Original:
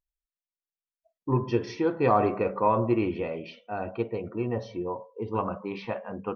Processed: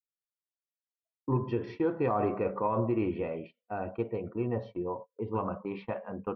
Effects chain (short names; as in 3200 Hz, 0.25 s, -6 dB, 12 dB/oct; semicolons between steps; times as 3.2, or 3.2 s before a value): gate -39 dBFS, range -29 dB; limiter -17 dBFS, peak gain reduction 6.5 dB; air absorption 330 m; gain -1.5 dB